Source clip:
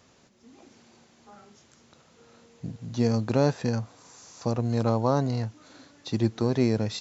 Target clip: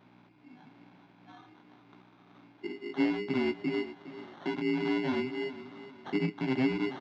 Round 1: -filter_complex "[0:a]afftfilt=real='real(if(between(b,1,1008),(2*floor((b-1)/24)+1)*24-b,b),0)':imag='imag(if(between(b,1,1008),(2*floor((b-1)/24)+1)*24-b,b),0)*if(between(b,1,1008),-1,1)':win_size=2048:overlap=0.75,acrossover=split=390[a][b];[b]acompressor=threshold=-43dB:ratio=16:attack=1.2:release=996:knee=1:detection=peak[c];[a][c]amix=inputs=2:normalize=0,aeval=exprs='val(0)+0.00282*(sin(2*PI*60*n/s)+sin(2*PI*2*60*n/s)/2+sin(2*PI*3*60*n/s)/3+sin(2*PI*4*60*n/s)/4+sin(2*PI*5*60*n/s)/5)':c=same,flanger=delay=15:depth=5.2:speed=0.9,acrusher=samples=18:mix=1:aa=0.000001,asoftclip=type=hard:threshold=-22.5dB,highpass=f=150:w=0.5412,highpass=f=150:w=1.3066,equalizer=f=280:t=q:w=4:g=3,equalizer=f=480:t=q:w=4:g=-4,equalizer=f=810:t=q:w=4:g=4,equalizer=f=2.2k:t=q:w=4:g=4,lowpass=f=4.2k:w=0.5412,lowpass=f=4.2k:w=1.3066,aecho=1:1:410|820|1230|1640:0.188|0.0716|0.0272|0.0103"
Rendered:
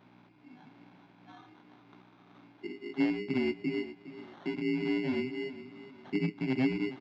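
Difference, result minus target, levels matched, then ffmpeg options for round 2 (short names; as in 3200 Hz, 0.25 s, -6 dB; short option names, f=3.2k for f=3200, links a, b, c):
compressor: peak gain reduction +11 dB
-filter_complex "[0:a]afftfilt=real='real(if(between(b,1,1008),(2*floor((b-1)/24)+1)*24-b,b),0)':imag='imag(if(between(b,1,1008),(2*floor((b-1)/24)+1)*24-b,b),0)*if(between(b,1,1008),-1,1)':win_size=2048:overlap=0.75,acrossover=split=390[a][b];[b]acompressor=threshold=-31dB:ratio=16:attack=1.2:release=996:knee=1:detection=peak[c];[a][c]amix=inputs=2:normalize=0,aeval=exprs='val(0)+0.00282*(sin(2*PI*60*n/s)+sin(2*PI*2*60*n/s)/2+sin(2*PI*3*60*n/s)/3+sin(2*PI*4*60*n/s)/4+sin(2*PI*5*60*n/s)/5)':c=same,flanger=delay=15:depth=5.2:speed=0.9,acrusher=samples=18:mix=1:aa=0.000001,asoftclip=type=hard:threshold=-22.5dB,highpass=f=150:w=0.5412,highpass=f=150:w=1.3066,equalizer=f=280:t=q:w=4:g=3,equalizer=f=480:t=q:w=4:g=-4,equalizer=f=810:t=q:w=4:g=4,equalizer=f=2.2k:t=q:w=4:g=4,lowpass=f=4.2k:w=0.5412,lowpass=f=4.2k:w=1.3066,aecho=1:1:410|820|1230|1640:0.188|0.0716|0.0272|0.0103"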